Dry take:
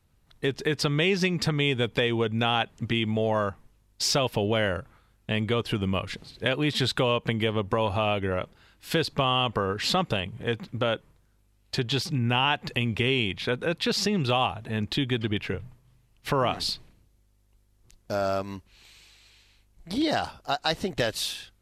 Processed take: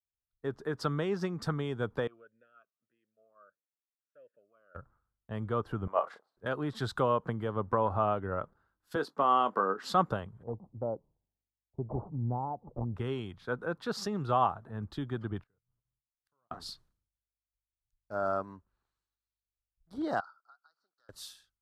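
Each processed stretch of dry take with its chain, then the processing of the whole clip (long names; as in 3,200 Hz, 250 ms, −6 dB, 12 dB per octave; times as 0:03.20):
0:02.07–0:04.75: phaser with its sweep stopped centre 1,900 Hz, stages 4 + formant filter swept between two vowels a-e 1.6 Hz
0:05.87–0:06.37: noise gate −40 dBFS, range −11 dB + high-pass with resonance 650 Hz, resonance Q 2.4 + double-tracking delay 34 ms −8.5 dB
0:08.95–0:09.86: downward expander −42 dBFS + high-pass filter 200 Hz 24 dB per octave + double-tracking delay 21 ms −12 dB
0:10.43–0:12.96: sample-and-hold swept by an LFO 8×, swing 160% 1.4 Hz + Butterworth low-pass 890 Hz 48 dB per octave
0:15.41–0:16.51: double-tracking delay 17 ms −10.5 dB + output level in coarse steps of 12 dB + gate with flip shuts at −31 dBFS, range −27 dB
0:20.20–0:21.09: pair of resonant band-passes 2,500 Hz, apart 1.7 octaves + downward compressor 5 to 1, threshold −41 dBFS
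whole clip: high shelf with overshoot 1,800 Hz −10 dB, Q 3; multiband upward and downward expander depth 100%; level −8 dB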